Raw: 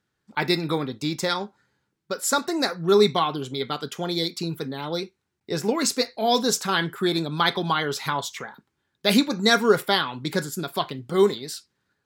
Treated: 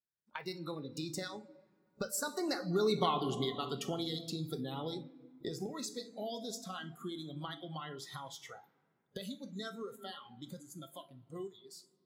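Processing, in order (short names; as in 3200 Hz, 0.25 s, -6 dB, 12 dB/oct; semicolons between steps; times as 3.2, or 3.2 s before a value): recorder AGC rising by 17 dB/s; Doppler pass-by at 3.05, 15 m/s, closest 2 m; compressor 2.5:1, threshold -55 dBFS, peak gain reduction 24 dB; on a send at -8 dB: reverb RT60 2.6 s, pre-delay 6 ms; on the sum: spectral noise reduction 16 dB; gain +13.5 dB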